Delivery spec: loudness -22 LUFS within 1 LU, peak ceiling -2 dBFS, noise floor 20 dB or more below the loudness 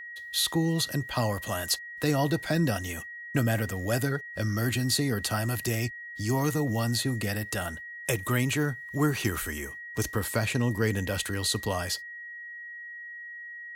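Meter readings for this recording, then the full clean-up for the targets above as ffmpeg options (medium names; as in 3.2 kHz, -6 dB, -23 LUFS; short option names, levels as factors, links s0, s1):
steady tone 1.9 kHz; tone level -39 dBFS; loudness -28.5 LUFS; peak level -13.0 dBFS; loudness target -22.0 LUFS
-> -af "bandreject=f=1900:w=30"
-af "volume=2.11"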